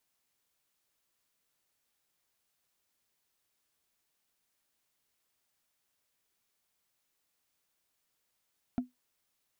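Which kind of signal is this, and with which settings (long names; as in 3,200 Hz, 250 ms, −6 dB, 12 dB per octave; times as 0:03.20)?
struck wood, lowest mode 250 Hz, decay 0.16 s, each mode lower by 9.5 dB, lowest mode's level −23.5 dB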